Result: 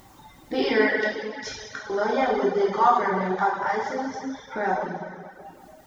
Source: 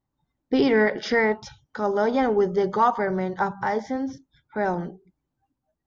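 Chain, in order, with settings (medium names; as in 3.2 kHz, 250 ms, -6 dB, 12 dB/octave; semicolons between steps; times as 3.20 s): bass shelf 380 Hz -10.5 dB; 0.93–1.90 s: inverted gate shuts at -25 dBFS, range -30 dB; upward compressor, threshold -27 dBFS; plate-style reverb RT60 2.1 s, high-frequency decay 1×, DRR -6 dB; reverb removal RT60 0.69 s; trim -2 dB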